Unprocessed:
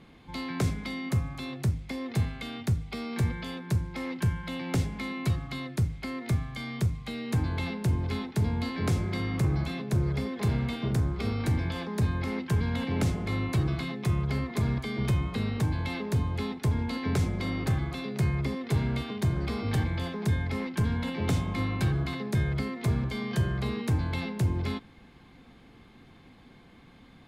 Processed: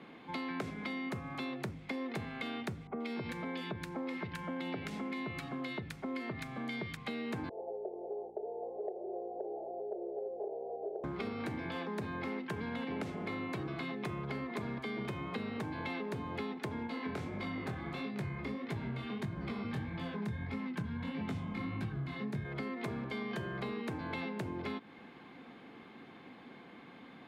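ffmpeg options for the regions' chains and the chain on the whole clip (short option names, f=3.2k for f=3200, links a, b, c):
-filter_complex "[0:a]asettb=1/sr,asplit=3[a][b][c];[a]atrim=end=2.874[d];[b]atrim=start=2.87:end=6.97,asetpts=PTS-STARTPTS,afade=t=in:d=0.004:c=qsin,afade=t=out:st=4.096:d=0.004:c=qsin,acompressor=threshold=-31dB:ratio=2:attack=3.2:release=140:knee=1:detection=peak,acrossover=split=1300[e][f];[f]adelay=130[g];[e][g]amix=inputs=2:normalize=0,atrim=end_sample=180810[h];[c]atrim=start=6.966[i];[d][h]acrossfade=d=0.004:c1=hsin:c2=qsin[j];[j][i]acrossfade=d=0.004:c1=qsin:c2=hsin,asettb=1/sr,asplit=3[k][l][m];[k]atrim=end=7.494[n];[l]atrim=start=7.49:end=11.04,asetpts=PTS-STARTPTS,afade=t=in:d=0.004:c=qsin,afade=t=out:st=3.546:d=0.004:c=qsin,asuperpass=centerf=540:order=12:qfactor=1.3,aeval=exprs='val(0)+0.00126*(sin(2*PI*60*n/s)+sin(2*PI*2*60*n/s)/2+sin(2*PI*3*60*n/s)/3+sin(2*PI*4*60*n/s)/4+sin(2*PI*5*60*n/s)/5)':c=same[o];[m]atrim=start=11.036[p];[n][o]acrossfade=d=0.004:c1=hsin:c2=qsin[q];[q][p]acrossfade=d=0.004:c1=qsin:c2=hsin,asettb=1/sr,asplit=3[r][s][t];[r]atrim=end=16.874[u];[s]atrim=start=16.87:end=22.45,asetpts=PTS-STARTPTS,afade=t=in:d=0.004:c=qsin,afade=t=out:st=5.576:d=0.004:c=qsin,asubboost=boost=5.5:cutoff=180,flanger=delay=18:depth=7:speed=1.6[v];[t]atrim=start=22.446[w];[u][v]acrossfade=d=0.004:c1=hsin:c2=qsin[x];[x][w]acrossfade=d=0.004:c1=qsin:c2=hsin,highpass=71,acrossover=split=190 3400:gain=0.112 1 0.224[y][z][aa];[y][z][aa]amix=inputs=3:normalize=0,acompressor=threshold=-40dB:ratio=6,volume=4dB"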